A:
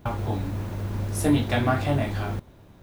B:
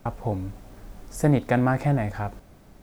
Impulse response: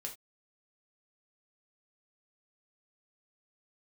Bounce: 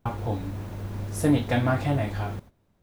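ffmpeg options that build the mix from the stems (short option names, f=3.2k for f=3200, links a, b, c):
-filter_complex "[0:a]volume=-4dB[a];[1:a]volume=-6dB[b];[a][b]amix=inputs=2:normalize=0,agate=range=-15dB:threshold=-43dB:ratio=16:detection=peak"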